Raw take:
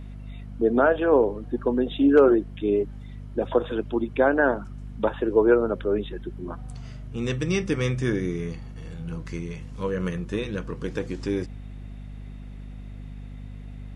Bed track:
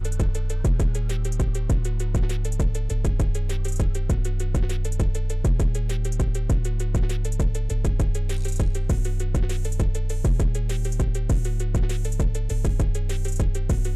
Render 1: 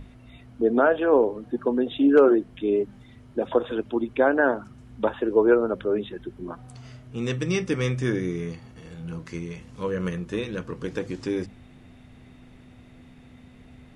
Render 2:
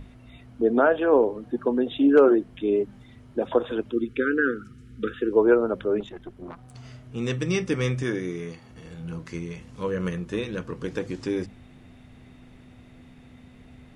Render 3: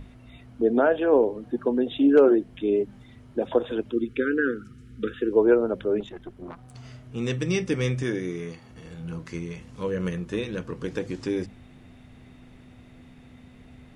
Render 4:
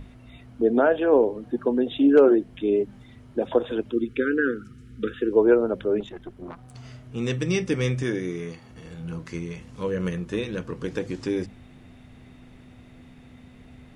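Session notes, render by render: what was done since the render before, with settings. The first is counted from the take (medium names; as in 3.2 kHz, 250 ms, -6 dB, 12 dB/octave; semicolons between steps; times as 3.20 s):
hum notches 50/100/150/200 Hz
3.92–5.33 s: brick-wall FIR band-stop 510–1200 Hz; 6.00–6.75 s: valve stage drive 31 dB, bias 0.65; 8.03–8.70 s: bass shelf 160 Hz -10.5 dB
dynamic bell 1.2 kHz, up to -6 dB, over -42 dBFS, Q 2
trim +1 dB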